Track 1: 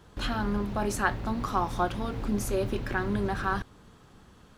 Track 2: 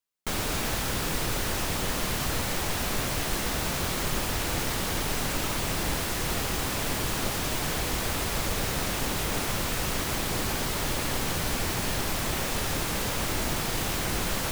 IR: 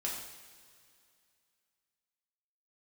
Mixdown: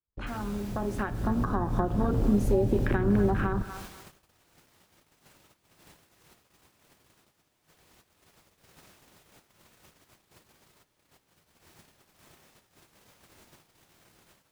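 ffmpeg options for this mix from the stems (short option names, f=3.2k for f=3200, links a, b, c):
-filter_complex "[0:a]acompressor=threshold=-29dB:ratio=4,afwtdn=0.0141,dynaudnorm=f=320:g=7:m=12dB,volume=-3.5dB,asplit=4[a][b][c][d];[b]volume=-14.5dB[e];[c]volume=-17dB[f];[1:a]highpass=f=100:p=1,bandreject=f=268.6:t=h:w=4,bandreject=f=537.2:t=h:w=4,bandreject=f=805.8:t=h:w=4,alimiter=limit=-20dB:level=0:latency=1:release=459,volume=-17dB,asplit=2[g][h];[h]volume=-7dB[i];[d]apad=whole_len=640288[j];[g][j]sidechaincompress=threshold=-41dB:ratio=8:attack=16:release=175[k];[2:a]atrim=start_sample=2205[l];[e][i]amix=inputs=2:normalize=0[m];[m][l]afir=irnorm=-1:irlink=0[n];[f]aecho=0:1:238|476|714|952|1190:1|0.35|0.122|0.0429|0.015[o];[a][k][n][o]amix=inputs=4:normalize=0,agate=range=-27dB:threshold=-42dB:ratio=16:detection=peak,acrossover=split=480[p][q];[q]acompressor=threshold=-32dB:ratio=6[r];[p][r]amix=inputs=2:normalize=0"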